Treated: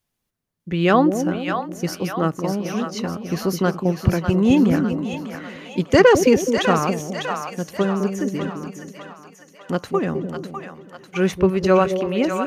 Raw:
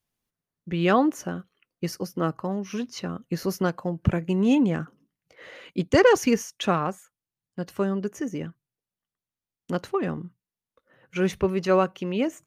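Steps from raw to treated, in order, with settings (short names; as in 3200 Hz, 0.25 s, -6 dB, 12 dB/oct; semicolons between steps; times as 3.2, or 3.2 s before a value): split-band echo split 610 Hz, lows 0.211 s, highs 0.6 s, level -6 dB; gain +4.5 dB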